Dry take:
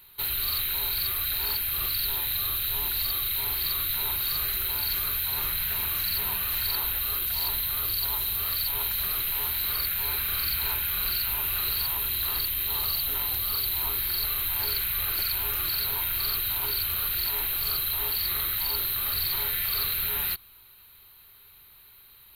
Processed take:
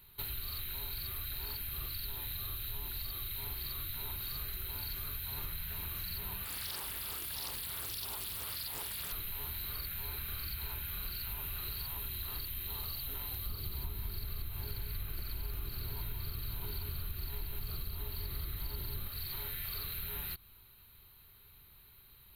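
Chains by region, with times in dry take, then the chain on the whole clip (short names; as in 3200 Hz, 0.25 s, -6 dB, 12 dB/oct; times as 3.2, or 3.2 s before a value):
6.44–9.12 HPF 220 Hz 6 dB/oct + Doppler distortion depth 0.68 ms
13.46–19.08 low shelf 450 Hz +10 dB + echo 0.184 s -4.5 dB
whole clip: low shelf 340 Hz +11.5 dB; compressor, threshold -29 dBFS; gain -7.5 dB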